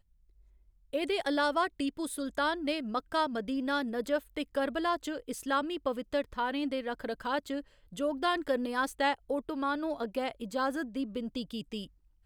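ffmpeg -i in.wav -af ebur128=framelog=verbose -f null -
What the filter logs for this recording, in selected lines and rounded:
Integrated loudness:
  I:         -33.0 LUFS
  Threshold: -43.2 LUFS
Loudness range:
  LRA:         2.0 LU
  Threshold: -52.9 LUFS
  LRA low:   -33.8 LUFS
  LRA high:  -31.9 LUFS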